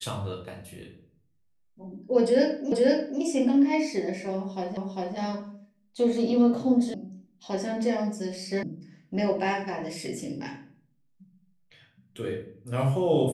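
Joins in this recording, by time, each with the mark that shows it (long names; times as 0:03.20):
0:02.72: the same again, the last 0.49 s
0:04.77: the same again, the last 0.4 s
0:06.94: cut off before it has died away
0:08.63: cut off before it has died away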